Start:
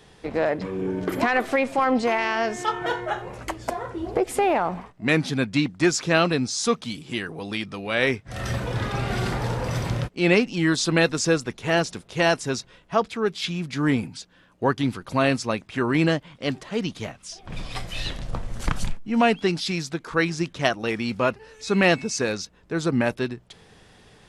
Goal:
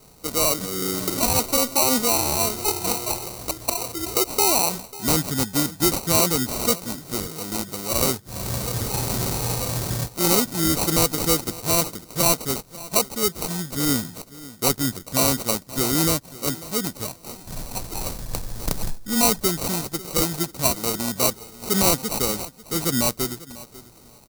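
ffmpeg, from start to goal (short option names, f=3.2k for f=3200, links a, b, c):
-filter_complex "[0:a]acrusher=samples=26:mix=1:aa=0.000001,asoftclip=type=tanh:threshold=-11.5dB,aexciter=amount=5.2:drive=2.2:freq=4k,asplit=2[a][b];[b]aecho=0:1:544|1088:0.119|0.0226[c];[a][c]amix=inputs=2:normalize=0,volume=-1dB"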